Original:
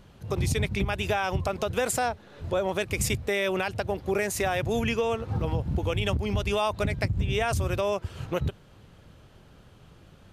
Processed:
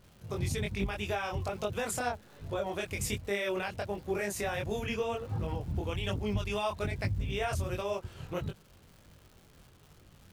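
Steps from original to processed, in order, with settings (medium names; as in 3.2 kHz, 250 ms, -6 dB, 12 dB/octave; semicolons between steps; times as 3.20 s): chorus voices 2, 1.2 Hz, delay 22 ms, depth 3 ms; crackle 350 per s -45 dBFS; trim -3.5 dB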